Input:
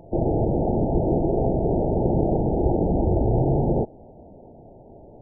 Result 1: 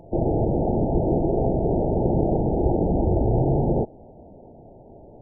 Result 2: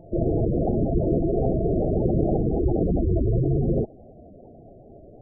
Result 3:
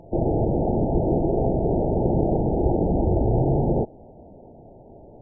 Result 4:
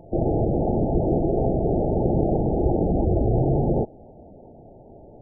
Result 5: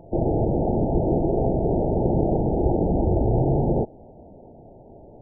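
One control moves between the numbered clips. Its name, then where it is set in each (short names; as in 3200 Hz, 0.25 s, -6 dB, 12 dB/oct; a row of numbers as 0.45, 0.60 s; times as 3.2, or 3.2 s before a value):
spectral gate, under each frame's peak: -60, -10, -50, -20, -35 dB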